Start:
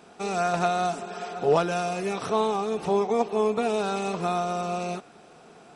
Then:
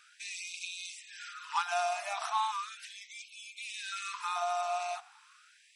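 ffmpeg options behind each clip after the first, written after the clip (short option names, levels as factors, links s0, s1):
-af "afftfilt=real='re*gte(b*sr/1024,590*pow(2200/590,0.5+0.5*sin(2*PI*0.37*pts/sr)))':imag='im*gte(b*sr/1024,590*pow(2200/590,0.5+0.5*sin(2*PI*0.37*pts/sr)))':win_size=1024:overlap=0.75,volume=0.794"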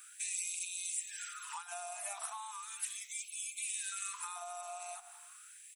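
-af "aecho=1:1:166|332:0.0708|0.0248,acompressor=threshold=0.00794:ratio=6,aexciter=amount=5.7:drive=9.4:freq=7400,volume=0.841"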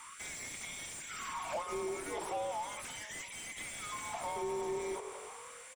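-filter_complex "[0:a]asplit=5[s0][s1][s2][s3][s4];[s1]adelay=338,afreqshift=45,volume=0.112[s5];[s2]adelay=676,afreqshift=90,volume=0.0603[s6];[s3]adelay=1014,afreqshift=135,volume=0.0327[s7];[s4]adelay=1352,afreqshift=180,volume=0.0176[s8];[s0][s5][s6][s7][s8]amix=inputs=5:normalize=0,asplit=2[s9][s10];[s10]highpass=f=720:p=1,volume=17.8,asoftclip=type=tanh:threshold=0.0668[s11];[s9][s11]amix=inputs=2:normalize=0,lowpass=f=1300:p=1,volume=0.501,afreqshift=-320,volume=0.841"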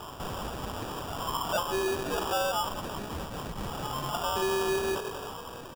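-af "acrusher=samples=21:mix=1:aa=0.000001,volume=2.66"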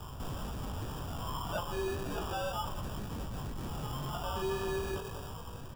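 -filter_complex "[0:a]acrossover=split=160|4500[s0][s1][s2];[s0]aeval=exprs='0.0282*sin(PI/2*2.82*val(0)/0.0282)':c=same[s3];[s1]flanger=delay=17.5:depth=3.2:speed=1.9[s4];[s2]alimiter=level_in=2.99:limit=0.0631:level=0:latency=1,volume=0.335[s5];[s3][s4][s5]amix=inputs=3:normalize=0,volume=0.562"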